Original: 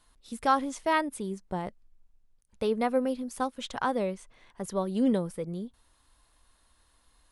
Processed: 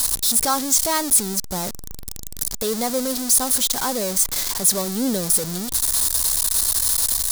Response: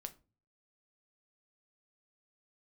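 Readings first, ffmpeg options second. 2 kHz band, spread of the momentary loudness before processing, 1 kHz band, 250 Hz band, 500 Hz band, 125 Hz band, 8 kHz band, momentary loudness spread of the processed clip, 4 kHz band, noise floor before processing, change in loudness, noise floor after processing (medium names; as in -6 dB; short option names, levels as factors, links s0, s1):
+4.0 dB, 13 LU, +2.5 dB, +4.0 dB, +3.0 dB, +6.0 dB, +31.0 dB, 10 LU, +19.5 dB, -67 dBFS, +12.0 dB, -32 dBFS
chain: -af "aeval=exprs='val(0)+0.5*0.0447*sgn(val(0))':c=same,aexciter=amount=4.1:drive=8.1:freq=3900"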